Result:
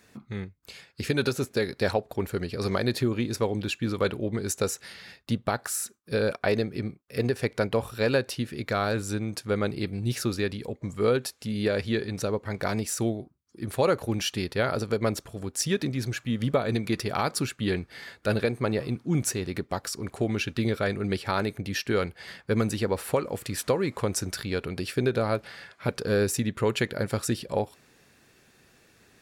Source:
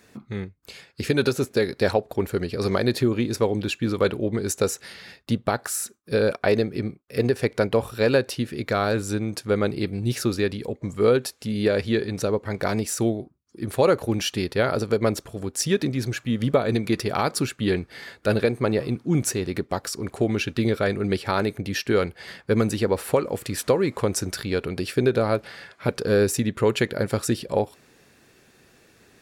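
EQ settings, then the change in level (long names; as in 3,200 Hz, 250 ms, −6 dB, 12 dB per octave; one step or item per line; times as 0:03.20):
parametric band 390 Hz −3 dB 1.5 octaves
−2.5 dB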